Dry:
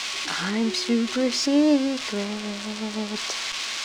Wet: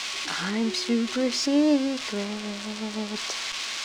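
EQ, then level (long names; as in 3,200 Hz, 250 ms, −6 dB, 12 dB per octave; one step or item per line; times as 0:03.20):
no EQ move
−2.0 dB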